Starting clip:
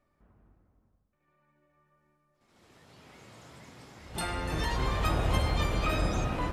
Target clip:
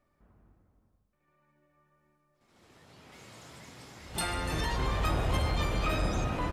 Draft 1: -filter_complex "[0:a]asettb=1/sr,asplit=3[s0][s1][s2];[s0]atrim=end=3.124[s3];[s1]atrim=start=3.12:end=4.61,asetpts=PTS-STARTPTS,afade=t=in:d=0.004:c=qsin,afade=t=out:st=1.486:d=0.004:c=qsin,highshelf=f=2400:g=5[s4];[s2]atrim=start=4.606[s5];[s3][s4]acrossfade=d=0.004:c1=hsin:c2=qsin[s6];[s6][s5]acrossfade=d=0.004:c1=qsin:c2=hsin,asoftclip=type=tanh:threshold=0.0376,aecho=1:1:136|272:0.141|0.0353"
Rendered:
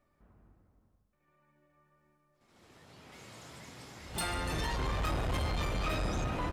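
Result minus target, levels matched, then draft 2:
saturation: distortion +10 dB
-filter_complex "[0:a]asettb=1/sr,asplit=3[s0][s1][s2];[s0]atrim=end=3.124[s3];[s1]atrim=start=3.12:end=4.61,asetpts=PTS-STARTPTS,afade=t=in:d=0.004:c=qsin,afade=t=out:st=1.486:d=0.004:c=qsin,highshelf=f=2400:g=5[s4];[s2]atrim=start=4.606[s5];[s3][s4]acrossfade=d=0.004:c1=hsin:c2=qsin[s6];[s6][s5]acrossfade=d=0.004:c1=qsin:c2=hsin,asoftclip=type=tanh:threshold=0.106,aecho=1:1:136|272:0.141|0.0353"

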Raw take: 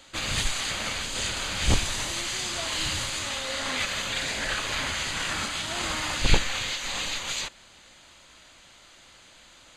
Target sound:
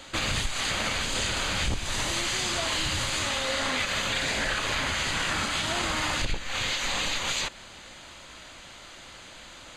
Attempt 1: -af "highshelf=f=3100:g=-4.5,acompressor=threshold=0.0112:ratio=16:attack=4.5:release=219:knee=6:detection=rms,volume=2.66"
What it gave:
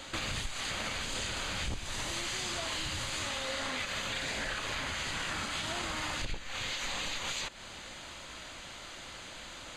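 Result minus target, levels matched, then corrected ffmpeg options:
compression: peak gain reduction +8 dB
-af "highshelf=f=3100:g=-4.5,acompressor=threshold=0.0299:ratio=16:attack=4.5:release=219:knee=6:detection=rms,volume=2.66"

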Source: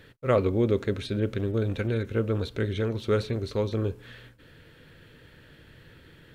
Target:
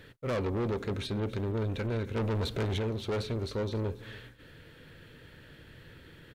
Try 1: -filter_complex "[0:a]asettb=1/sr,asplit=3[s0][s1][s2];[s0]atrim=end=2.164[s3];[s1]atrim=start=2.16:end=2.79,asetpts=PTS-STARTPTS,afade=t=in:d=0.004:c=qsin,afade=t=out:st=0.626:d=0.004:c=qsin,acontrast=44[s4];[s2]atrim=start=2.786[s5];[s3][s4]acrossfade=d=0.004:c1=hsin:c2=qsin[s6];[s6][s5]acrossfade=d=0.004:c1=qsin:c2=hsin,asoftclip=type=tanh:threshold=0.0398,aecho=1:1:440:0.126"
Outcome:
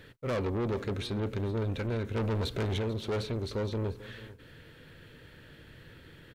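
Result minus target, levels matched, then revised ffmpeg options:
echo 160 ms late
-filter_complex "[0:a]asettb=1/sr,asplit=3[s0][s1][s2];[s0]atrim=end=2.164[s3];[s1]atrim=start=2.16:end=2.79,asetpts=PTS-STARTPTS,afade=t=in:d=0.004:c=qsin,afade=t=out:st=0.626:d=0.004:c=qsin,acontrast=44[s4];[s2]atrim=start=2.786[s5];[s3][s4]acrossfade=d=0.004:c1=hsin:c2=qsin[s6];[s6][s5]acrossfade=d=0.004:c1=qsin:c2=hsin,asoftclip=type=tanh:threshold=0.0398,aecho=1:1:280:0.126"

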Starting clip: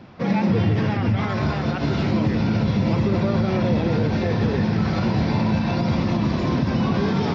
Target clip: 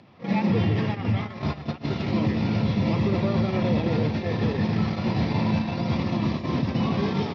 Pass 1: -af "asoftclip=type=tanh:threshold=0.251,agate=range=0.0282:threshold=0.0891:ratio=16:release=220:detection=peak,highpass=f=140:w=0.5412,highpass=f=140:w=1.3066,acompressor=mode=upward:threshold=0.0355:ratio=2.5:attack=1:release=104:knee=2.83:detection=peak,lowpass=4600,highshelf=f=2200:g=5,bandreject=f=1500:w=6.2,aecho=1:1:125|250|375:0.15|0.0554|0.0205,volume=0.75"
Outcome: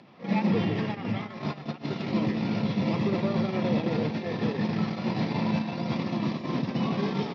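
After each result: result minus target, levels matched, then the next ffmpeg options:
saturation: distortion +11 dB; 125 Hz band -3.0 dB
-af "asoftclip=type=tanh:threshold=0.531,agate=range=0.0282:threshold=0.0891:ratio=16:release=220:detection=peak,highpass=f=140:w=0.5412,highpass=f=140:w=1.3066,acompressor=mode=upward:threshold=0.0355:ratio=2.5:attack=1:release=104:knee=2.83:detection=peak,lowpass=4600,highshelf=f=2200:g=5,bandreject=f=1500:w=6.2,aecho=1:1:125|250|375:0.15|0.0554|0.0205,volume=0.75"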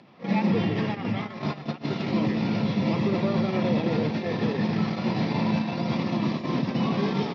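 125 Hz band -3.0 dB
-af "asoftclip=type=tanh:threshold=0.531,agate=range=0.0282:threshold=0.0891:ratio=16:release=220:detection=peak,highpass=f=68:w=0.5412,highpass=f=68:w=1.3066,acompressor=mode=upward:threshold=0.0355:ratio=2.5:attack=1:release=104:knee=2.83:detection=peak,lowpass=4600,highshelf=f=2200:g=5,bandreject=f=1500:w=6.2,aecho=1:1:125|250|375:0.15|0.0554|0.0205,volume=0.75"

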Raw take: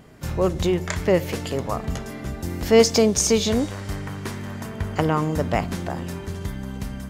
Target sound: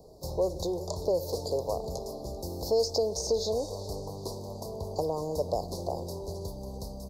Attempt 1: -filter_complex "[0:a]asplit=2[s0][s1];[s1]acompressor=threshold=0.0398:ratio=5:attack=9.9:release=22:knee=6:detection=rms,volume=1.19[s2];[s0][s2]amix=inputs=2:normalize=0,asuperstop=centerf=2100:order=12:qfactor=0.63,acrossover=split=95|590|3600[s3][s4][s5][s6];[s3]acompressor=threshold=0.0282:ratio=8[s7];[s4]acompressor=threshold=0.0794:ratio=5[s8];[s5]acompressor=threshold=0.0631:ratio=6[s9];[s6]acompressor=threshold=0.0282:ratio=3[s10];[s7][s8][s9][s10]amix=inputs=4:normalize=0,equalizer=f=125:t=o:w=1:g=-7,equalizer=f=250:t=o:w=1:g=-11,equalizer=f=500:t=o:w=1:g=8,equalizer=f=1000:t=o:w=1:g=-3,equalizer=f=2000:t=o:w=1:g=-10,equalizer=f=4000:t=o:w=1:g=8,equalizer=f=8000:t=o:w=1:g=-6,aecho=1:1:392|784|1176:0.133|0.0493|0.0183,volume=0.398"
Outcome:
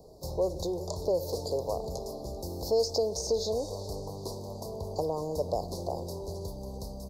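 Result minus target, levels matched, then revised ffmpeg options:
compression: peak gain reduction +7 dB
-filter_complex "[0:a]asplit=2[s0][s1];[s1]acompressor=threshold=0.106:ratio=5:attack=9.9:release=22:knee=6:detection=rms,volume=1.19[s2];[s0][s2]amix=inputs=2:normalize=0,asuperstop=centerf=2100:order=12:qfactor=0.63,acrossover=split=95|590|3600[s3][s4][s5][s6];[s3]acompressor=threshold=0.0282:ratio=8[s7];[s4]acompressor=threshold=0.0794:ratio=5[s8];[s5]acompressor=threshold=0.0631:ratio=6[s9];[s6]acompressor=threshold=0.0282:ratio=3[s10];[s7][s8][s9][s10]amix=inputs=4:normalize=0,equalizer=f=125:t=o:w=1:g=-7,equalizer=f=250:t=o:w=1:g=-11,equalizer=f=500:t=o:w=1:g=8,equalizer=f=1000:t=o:w=1:g=-3,equalizer=f=2000:t=o:w=1:g=-10,equalizer=f=4000:t=o:w=1:g=8,equalizer=f=8000:t=o:w=1:g=-6,aecho=1:1:392|784|1176:0.133|0.0493|0.0183,volume=0.398"

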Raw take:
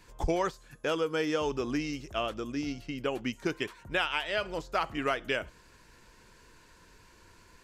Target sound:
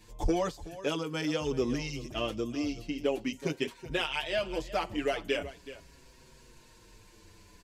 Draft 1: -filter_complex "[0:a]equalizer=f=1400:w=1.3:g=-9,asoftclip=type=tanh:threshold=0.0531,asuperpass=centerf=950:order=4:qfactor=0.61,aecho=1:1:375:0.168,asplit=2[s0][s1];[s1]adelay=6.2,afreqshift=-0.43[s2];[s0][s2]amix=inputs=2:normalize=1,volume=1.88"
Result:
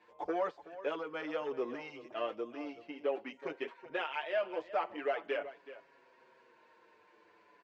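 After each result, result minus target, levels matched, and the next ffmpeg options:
saturation: distortion +10 dB; 1 kHz band +4.0 dB
-filter_complex "[0:a]equalizer=f=1400:w=1.3:g=-9,asoftclip=type=tanh:threshold=0.112,asuperpass=centerf=950:order=4:qfactor=0.61,aecho=1:1:375:0.168,asplit=2[s0][s1];[s1]adelay=6.2,afreqshift=-0.43[s2];[s0][s2]amix=inputs=2:normalize=1,volume=1.88"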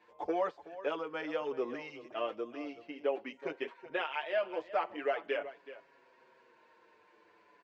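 1 kHz band +4.0 dB
-filter_complex "[0:a]equalizer=f=1400:w=1.3:g=-9,asoftclip=type=tanh:threshold=0.112,aecho=1:1:375:0.168,asplit=2[s0][s1];[s1]adelay=6.2,afreqshift=-0.43[s2];[s0][s2]amix=inputs=2:normalize=1,volume=1.88"

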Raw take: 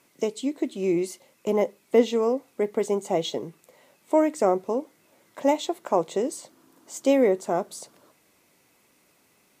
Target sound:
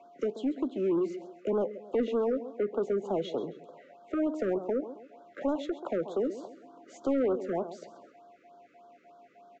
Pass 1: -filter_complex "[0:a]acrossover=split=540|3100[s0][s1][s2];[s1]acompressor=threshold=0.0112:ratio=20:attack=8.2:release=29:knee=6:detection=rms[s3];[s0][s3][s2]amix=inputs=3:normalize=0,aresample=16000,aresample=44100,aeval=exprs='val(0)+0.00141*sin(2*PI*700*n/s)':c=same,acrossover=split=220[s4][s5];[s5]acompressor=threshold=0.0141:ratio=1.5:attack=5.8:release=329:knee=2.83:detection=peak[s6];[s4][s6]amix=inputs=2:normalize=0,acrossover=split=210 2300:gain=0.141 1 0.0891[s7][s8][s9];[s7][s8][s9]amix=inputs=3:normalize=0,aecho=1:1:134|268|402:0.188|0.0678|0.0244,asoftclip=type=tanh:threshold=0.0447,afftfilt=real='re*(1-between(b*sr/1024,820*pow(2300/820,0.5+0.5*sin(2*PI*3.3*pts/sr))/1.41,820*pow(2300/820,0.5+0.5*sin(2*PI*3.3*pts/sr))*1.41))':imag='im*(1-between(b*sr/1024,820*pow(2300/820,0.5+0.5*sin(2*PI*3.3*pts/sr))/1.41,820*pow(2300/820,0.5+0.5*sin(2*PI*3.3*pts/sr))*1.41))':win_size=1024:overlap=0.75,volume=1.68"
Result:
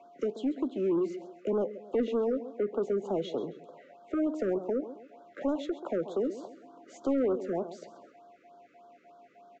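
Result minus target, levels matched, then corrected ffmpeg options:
compression: peak gain reduction +6.5 dB
-filter_complex "[0:a]acrossover=split=540|3100[s0][s1][s2];[s1]acompressor=threshold=0.0251:ratio=20:attack=8.2:release=29:knee=6:detection=rms[s3];[s0][s3][s2]amix=inputs=3:normalize=0,aresample=16000,aresample=44100,aeval=exprs='val(0)+0.00141*sin(2*PI*700*n/s)':c=same,acrossover=split=220[s4][s5];[s5]acompressor=threshold=0.0141:ratio=1.5:attack=5.8:release=329:knee=2.83:detection=peak[s6];[s4][s6]amix=inputs=2:normalize=0,acrossover=split=210 2300:gain=0.141 1 0.0891[s7][s8][s9];[s7][s8][s9]amix=inputs=3:normalize=0,aecho=1:1:134|268|402:0.188|0.0678|0.0244,asoftclip=type=tanh:threshold=0.0447,afftfilt=real='re*(1-between(b*sr/1024,820*pow(2300/820,0.5+0.5*sin(2*PI*3.3*pts/sr))/1.41,820*pow(2300/820,0.5+0.5*sin(2*PI*3.3*pts/sr))*1.41))':imag='im*(1-between(b*sr/1024,820*pow(2300/820,0.5+0.5*sin(2*PI*3.3*pts/sr))/1.41,820*pow(2300/820,0.5+0.5*sin(2*PI*3.3*pts/sr))*1.41))':win_size=1024:overlap=0.75,volume=1.68"

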